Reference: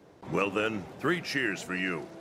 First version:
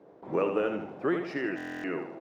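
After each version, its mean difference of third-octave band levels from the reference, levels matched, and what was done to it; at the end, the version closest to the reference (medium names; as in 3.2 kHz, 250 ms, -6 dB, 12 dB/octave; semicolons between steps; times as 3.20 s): 7.0 dB: band-pass filter 500 Hz, Q 0.93; feedback delay 78 ms, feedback 43%, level -7 dB; buffer glitch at 1.56 s, samples 1024, times 11; trim +3 dB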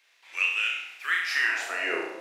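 13.0 dB: high-pass 260 Hz 12 dB/octave; high-pass sweep 2.4 kHz -> 420 Hz, 0.99–2.00 s; on a send: flutter echo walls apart 5.9 m, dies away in 0.72 s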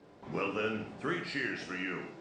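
4.5 dB: knee-point frequency compression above 3.3 kHz 1.5:1; in parallel at -2 dB: compression, threshold -45 dBFS, peak gain reduction 20.5 dB; on the sum: gated-style reverb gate 230 ms falling, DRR 2 dB; trim -8 dB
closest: third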